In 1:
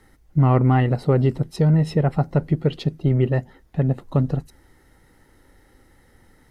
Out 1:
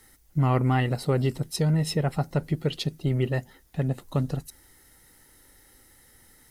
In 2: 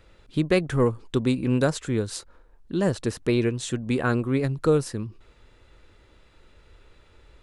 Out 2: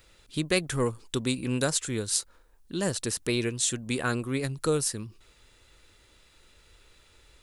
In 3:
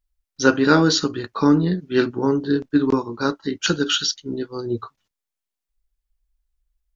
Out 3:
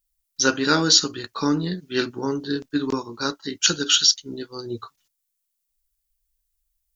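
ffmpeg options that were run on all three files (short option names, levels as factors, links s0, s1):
-af "crystalizer=i=5.5:c=0,volume=0.473"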